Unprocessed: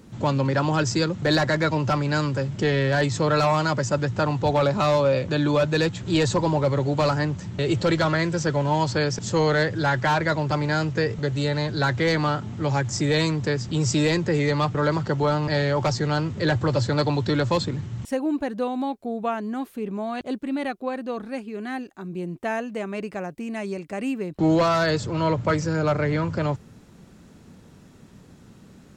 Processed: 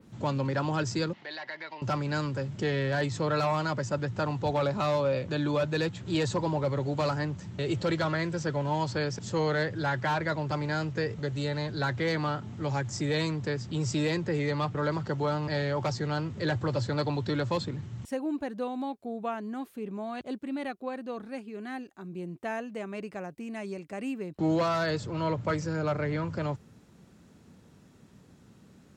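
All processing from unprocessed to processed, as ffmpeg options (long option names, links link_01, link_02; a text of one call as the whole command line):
ffmpeg -i in.wav -filter_complex "[0:a]asettb=1/sr,asplit=3[link_01][link_02][link_03];[link_01]atrim=end=1.134[link_04];[link_02]atrim=start=1.13:end=1.82,asetpts=PTS-STARTPTS,afade=type=in:duration=0.004:curve=qsin,afade=type=out:start_time=0.686:duration=0.004:curve=qsin,acompressor=threshold=-29dB:ratio=5:attack=3.2:release=140:knee=1:detection=peak,highpass=480,equalizer=frequency=500:width_type=q:width=4:gain=-6,equalizer=frequency=880:width_type=q:width=4:gain=4,equalizer=frequency=1300:width_type=q:width=4:gain=-5,equalizer=frequency=2000:width_type=q:width=4:gain=9,equalizer=frequency=2900:width_type=q:width=4:gain=6,equalizer=frequency=4600:width_type=q:width=4:gain=4,lowpass=frequency=5000:width=0.5412,lowpass=frequency=5000:width=1.3066[link_05];[link_03]atrim=start=1.816[link_06];[link_04][link_05]acrossfade=duration=0.004:curve1=hsin:curve2=qsin[link_07];[link_07][link_06]acrossfade=duration=0.004:curve1=qsin:curve2=hsin,highpass=51,adynamicequalizer=threshold=0.00562:dfrequency=6800:dqfactor=1.2:tfrequency=6800:tqfactor=1.2:attack=5:release=100:ratio=0.375:range=2:mode=cutabove:tftype=bell,volume=-7dB" out.wav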